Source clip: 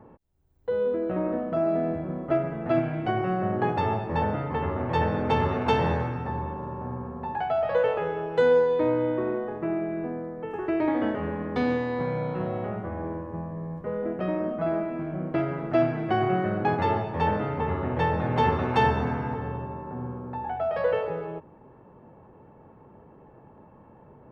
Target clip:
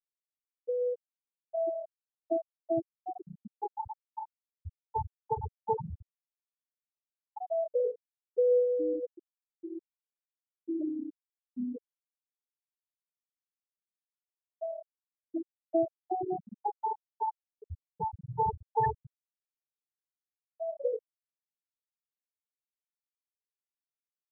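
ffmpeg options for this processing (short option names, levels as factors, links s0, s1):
-af "aeval=exprs='0.355*(cos(1*acos(clip(val(0)/0.355,-1,1)))-cos(1*PI/2))+0.00447*(cos(3*acos(clip(val(0)/0.355,-1,1)))-cos(3*PI/2))':c=same,afftfilt=real='re*gte(hypot(re,im),0.447)':imag='im*gte(hypot(re,im),0.447)':win_size=1024:overlap=0.75,crystalizer=i=4:c=0,volume=0.562"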